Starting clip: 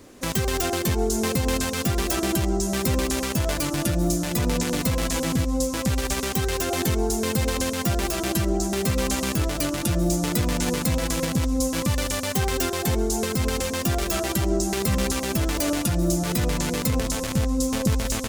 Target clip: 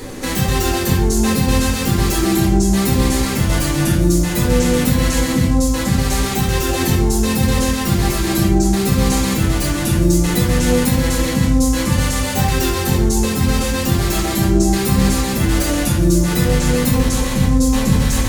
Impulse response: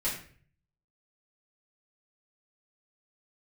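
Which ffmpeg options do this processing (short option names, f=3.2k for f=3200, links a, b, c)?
-filter_complex "[0:a]acompressor=mode=upward:threshold=-27dB:ratio=2.5[a];[1:a]atrim=start_sample=2205,asetrate=38808,aresample=44100[b];[a][b]afir=irnorm=-1:irlink=0"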